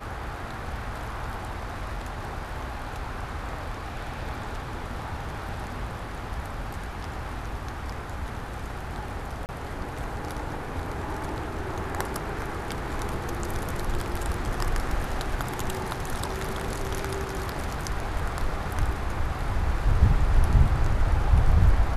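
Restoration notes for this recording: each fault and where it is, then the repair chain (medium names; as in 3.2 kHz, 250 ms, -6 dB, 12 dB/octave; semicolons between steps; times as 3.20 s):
9.46–9.49 s: dropout 29 ms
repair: interpolate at 9.46 s, 29 ms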